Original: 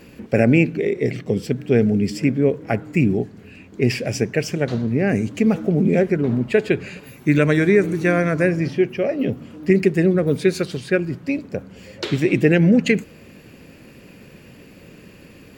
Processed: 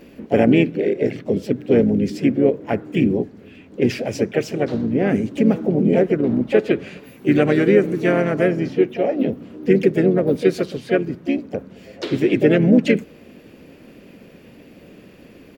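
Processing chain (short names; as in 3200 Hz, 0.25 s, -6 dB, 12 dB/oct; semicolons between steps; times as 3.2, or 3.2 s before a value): graphic EQ 125/250/500/8000 Hz -4/+5/+4/-5 dB; harmoniser -4 st -11 dB, +4 st -9 dB; gain -3.5 dB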